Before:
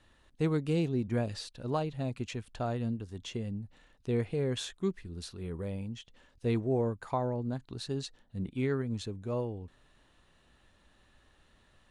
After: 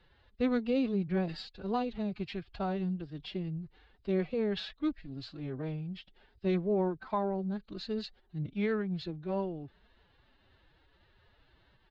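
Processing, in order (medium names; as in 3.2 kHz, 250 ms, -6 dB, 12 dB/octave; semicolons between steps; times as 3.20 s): resampled via 11.025 kHz; formant-preserving pitch shift +8 st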